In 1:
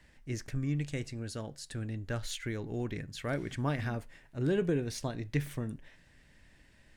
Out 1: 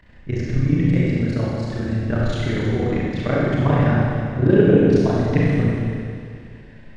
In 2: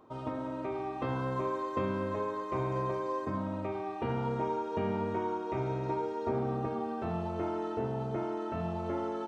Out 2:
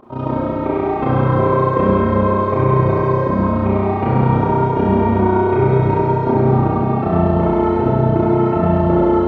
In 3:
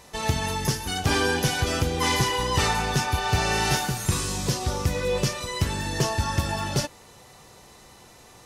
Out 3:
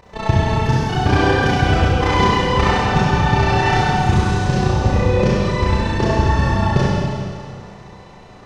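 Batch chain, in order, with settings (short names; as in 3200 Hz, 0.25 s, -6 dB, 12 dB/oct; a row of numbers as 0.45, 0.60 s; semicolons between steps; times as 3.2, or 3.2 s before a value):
AM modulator 30 Hz, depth 85%; tape spacing loss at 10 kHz 28 dB; Schroeder reverb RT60 2.2 s, combs from 31 ms, DRR -5.5 dB; normalise peaks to -2 dBFS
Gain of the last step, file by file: +15.5, +18.0, +9.5 dB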